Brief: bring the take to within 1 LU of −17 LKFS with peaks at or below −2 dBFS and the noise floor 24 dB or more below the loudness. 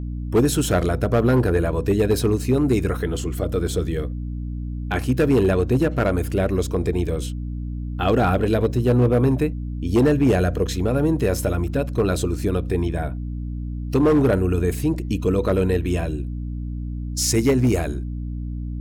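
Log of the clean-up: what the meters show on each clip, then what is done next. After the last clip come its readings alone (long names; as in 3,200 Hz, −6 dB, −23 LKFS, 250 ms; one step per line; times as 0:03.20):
share of clipped samples 1.0%; peaks flattened at −11.5 dBFS; mains hum 60 Hz; hum harmonics up to 300 Hz; level of the hum −25 dBFS; integrated loudness −21.5 LKFS; sample peak −11.5 dBFS; target loudness −17.0 LKFS
→ clipped peaks rebuilt −11.5 dBFS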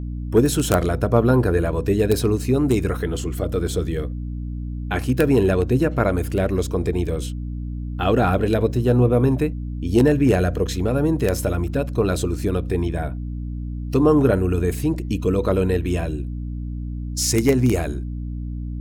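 share of clipped samples 0.0%; mains hum 60 Hz; hum harmonics up to 300 Hz; level of the hum −25 dBFS
→ mains-hum notches 60/120/180/240/300 Hz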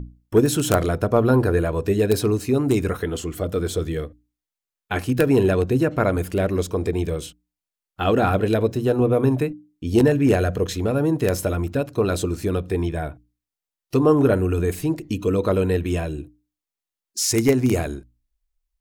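mains hum none found; integrated loudness −21.5 LKFS; sample peak −2.0 dBFS; target loudness −17.0 LKFS
→ level +4.5 dB
brickwall limiter −2 dBFS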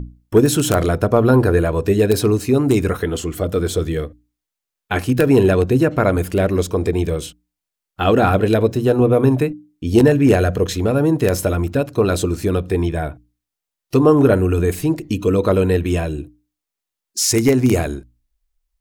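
integrated loudness −17.0 LKFS; sample peak −2.0 dBFS; background noise floor −84 dBFS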